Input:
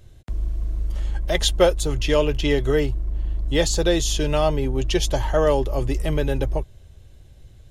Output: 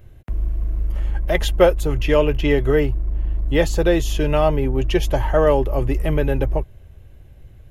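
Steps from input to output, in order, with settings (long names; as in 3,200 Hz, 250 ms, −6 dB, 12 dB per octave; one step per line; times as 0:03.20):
flat-topped bell 5,600 Hz −11 dB
level +3 dB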